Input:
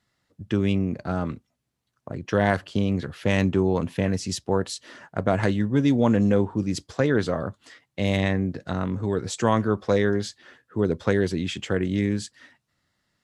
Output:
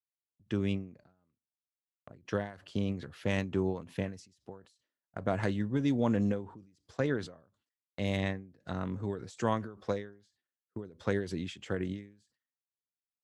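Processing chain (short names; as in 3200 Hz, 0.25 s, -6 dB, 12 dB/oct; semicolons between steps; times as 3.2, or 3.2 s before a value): gate -44 dBFS, range -30 dB; ending taper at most 120 dB/s; gain -8.5 dB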